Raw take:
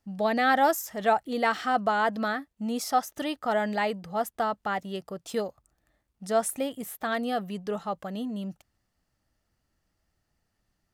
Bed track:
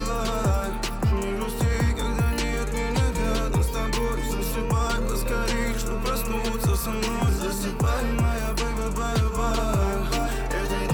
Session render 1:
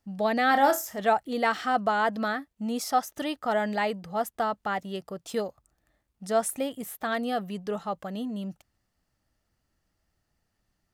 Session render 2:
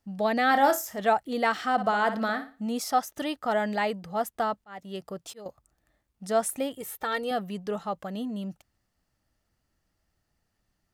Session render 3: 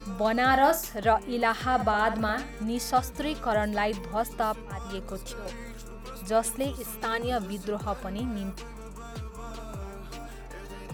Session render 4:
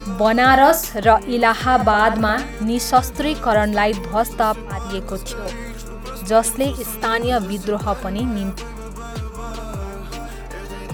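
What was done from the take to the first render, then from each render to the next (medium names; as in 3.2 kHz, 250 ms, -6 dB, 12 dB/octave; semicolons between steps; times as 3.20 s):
0.48–1.00 s: flutter echo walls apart 5 m, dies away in 0.21 s
1.72–2.67 s: flutter echo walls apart 10 m, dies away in 0.34 s; 4.54–5.46 s: slow attack 385 ms; 6.76–7.31 s: comb 2.2 ms, depth 62%
add bed track -15.5 dB
trim +10 dB; peak limiter -1 dBFS, peak gain reduction 1.5 dB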